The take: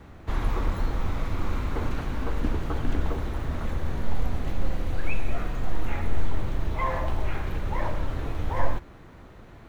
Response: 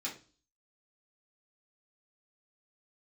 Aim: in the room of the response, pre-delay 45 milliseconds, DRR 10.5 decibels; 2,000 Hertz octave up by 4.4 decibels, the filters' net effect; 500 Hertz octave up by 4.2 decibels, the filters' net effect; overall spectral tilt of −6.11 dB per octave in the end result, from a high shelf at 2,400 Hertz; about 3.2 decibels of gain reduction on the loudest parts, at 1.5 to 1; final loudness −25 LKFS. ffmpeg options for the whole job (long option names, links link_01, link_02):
-filter_complex "[0:a]equalizer=frequency=500:width_type=o:gain=5,equalizer=frequency=2000:width_type=o:gain=7.5,highshelf=frequency=2400:gain=-5,acompressor=threshold=-22dB:ratio=1.5,asplit=2[link_01][link_02];[1:a]atrim=start_sample=2205,adelay=45[link_03];[link_02][link_03]afir=irnorm=-1:irlink=0,volume=-12dB[link_04];[link_01][link_04]amix=inputs=2:normalize=0,volume=6dB"